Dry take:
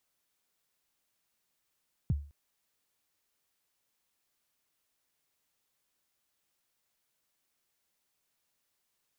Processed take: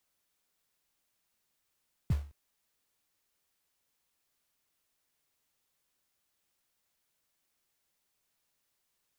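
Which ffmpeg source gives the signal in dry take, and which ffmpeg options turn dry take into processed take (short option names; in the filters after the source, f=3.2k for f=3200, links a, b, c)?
-f lavfi -i "aevalsrc='0.0794*pow(10,-3*t/0.38)*sin(2*PI*(180*0.028/log(72/180)*(exp(log(72/180)*min(t,0.028)/0.028)-1)+72*max(t-0.028,0)))':d=0.21:s=44100"
-filter_complex "[0:a]lowshelf=f=81:g=3.5,acrossover=split=150[a][b];[a]acrusher=bits=4:mode=log:mix=0:aa=0.000001[c];[c][b]amix=inputs=2:normalize=0"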